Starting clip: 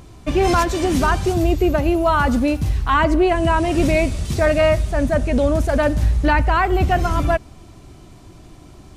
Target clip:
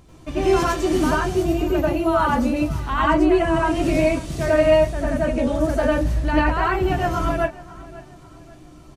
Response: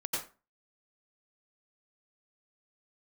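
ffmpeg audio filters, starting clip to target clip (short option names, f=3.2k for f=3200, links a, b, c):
-filter_complex "[0:a]asplit=2[a][b];[b]adelay=541,lowpass=f=4.2k:p=1,volume=-19dB,asplit=2[c][d];[d]adelay=541,lowpass=f=4.2k:p=1,volume=0.4,asplit=2[e][f];[f]adelay=541,lowpass=f=4.2k:p=1,volume=0.4[g];[a][c][e][g]amix=inputs=4:normalize=0[h];[1:a]atrim=start_sample=2205,atrim=end_sample=6174[i];[h][i]afir=irnorm=-1:irlink=0,volume=-6.5dB"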